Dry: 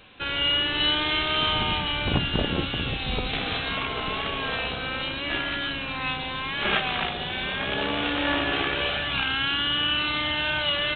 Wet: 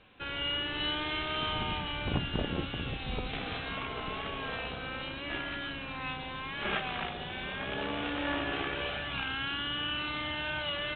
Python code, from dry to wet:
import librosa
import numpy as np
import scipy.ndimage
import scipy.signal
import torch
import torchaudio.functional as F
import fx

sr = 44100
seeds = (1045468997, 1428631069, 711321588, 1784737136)

y = fx.air_absorb(x, sr, metres=220.0)
y = F.gain(torch.from_numpy(y), -6.5).numpy()